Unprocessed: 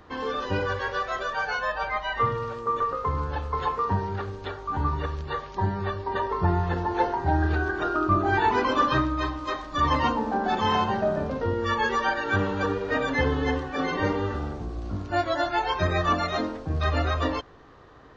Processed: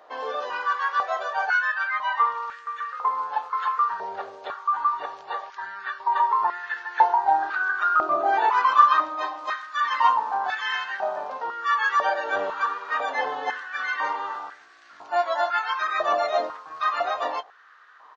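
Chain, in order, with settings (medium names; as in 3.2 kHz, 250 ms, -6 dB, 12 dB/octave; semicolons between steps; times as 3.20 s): doubling 20 ms -13.5 dB; step-sequenced high-pass 2 Hz 640–1700 Hz; trim -3 dB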